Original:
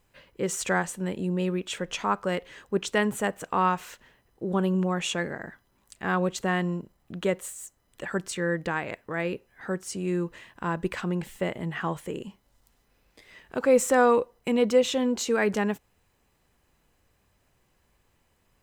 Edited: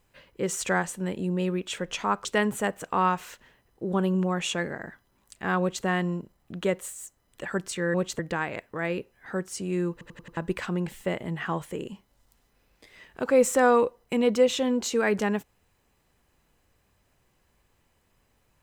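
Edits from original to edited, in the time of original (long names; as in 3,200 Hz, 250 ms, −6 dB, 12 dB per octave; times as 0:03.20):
0:02.25–0:02.85: remove
0:06.20–0:06.45: duplicate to 0:08.54
0:10.27: stutter in place 0.09 s, 5 plays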